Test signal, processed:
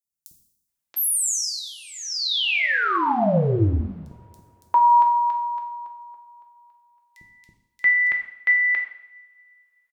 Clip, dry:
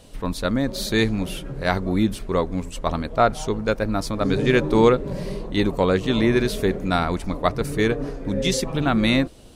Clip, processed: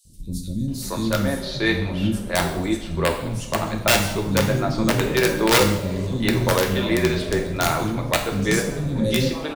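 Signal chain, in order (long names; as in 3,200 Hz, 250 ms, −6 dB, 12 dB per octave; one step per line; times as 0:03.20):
three-band delay without the direct sound highs, lows, mids 50/680 ms, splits 280/5,100 Hz
wrap-around overflow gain 10 dB
coupled-rooms reverb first 0.72 s, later 2.9 s, from −25 dB, DRR 2.5 dB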